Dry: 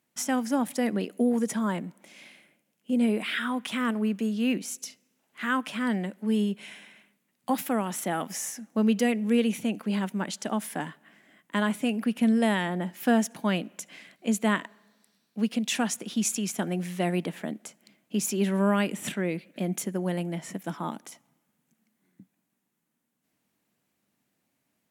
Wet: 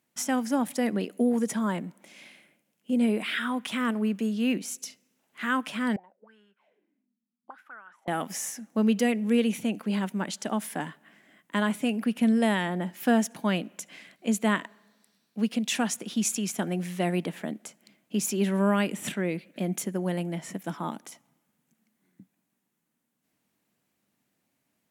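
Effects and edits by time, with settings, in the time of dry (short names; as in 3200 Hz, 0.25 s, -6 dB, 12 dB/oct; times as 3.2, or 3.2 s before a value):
5.96–8.08 auto-wah 220–1500 Hz, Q 12, up, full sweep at -25.5 dBFS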